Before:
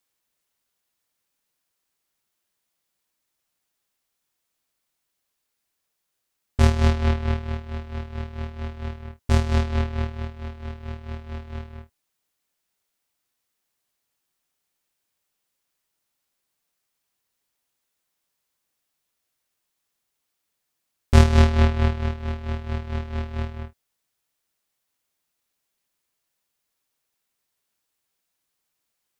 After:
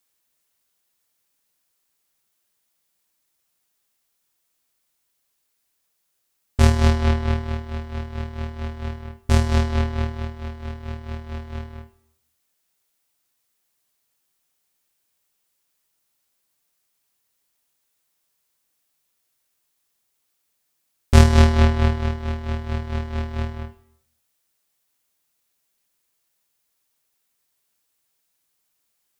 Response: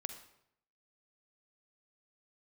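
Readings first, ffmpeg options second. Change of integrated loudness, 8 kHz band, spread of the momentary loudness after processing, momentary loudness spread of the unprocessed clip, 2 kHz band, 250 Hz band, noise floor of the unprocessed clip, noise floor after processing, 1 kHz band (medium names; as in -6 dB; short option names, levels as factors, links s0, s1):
+1.5 dB, +5.0 dB, 18 LU, 18 LU, +2.5 dB, +2.5 dB, -79 dBFS, -73 dBFS, +3.0 dB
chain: -filter_complex "[0:a]asplit=2[s0][s1];[1:a]atrim=start_sample=2205,highshelf=f=5100:g=8.5[s2];[s1][s2]afir=irnorm=-1:irlink=0,volume=1.26[s3];[s0][s3]amix=inputs=2:normalize=0,volume=0.631"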